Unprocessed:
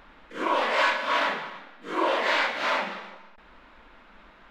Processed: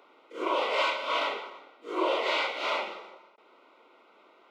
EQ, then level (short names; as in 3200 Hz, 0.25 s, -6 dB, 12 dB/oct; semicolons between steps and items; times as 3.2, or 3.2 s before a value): dynamic EQ 3100 Hz, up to +5 dB, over -38 dBFS, Q 1.1; ladder high-pass 330 Hz, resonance 50%; Butterworth band-stop 1700 Hz, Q 3.7; +3.5 dB